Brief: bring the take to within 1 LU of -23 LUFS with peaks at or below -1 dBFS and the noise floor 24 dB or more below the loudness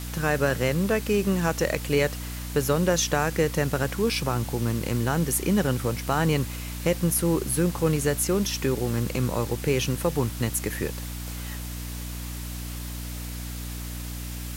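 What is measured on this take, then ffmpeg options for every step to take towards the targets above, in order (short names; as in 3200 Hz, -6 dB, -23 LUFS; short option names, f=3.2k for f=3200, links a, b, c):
hum 60 Hz; harmonics up to 300 Hz; hum level -32 dBFS; noise floor -34 dBFS; noise floor target -51 dBFS; loudness -26.5 LUFS; peak -10.0 dBFS; loudness target -23.0 LUFS
-> -af "bandreject=f=60:t=h:w=6,bandreject=f=120:t=h:w=6,bandreject=f=180:t=h:w=6,bandreject=f=240:t=h:w=6,bandreject=f=300:t=h:w=6"
-af "afftdn=nr=17:nf=-34"
-af "volume=3.5dB"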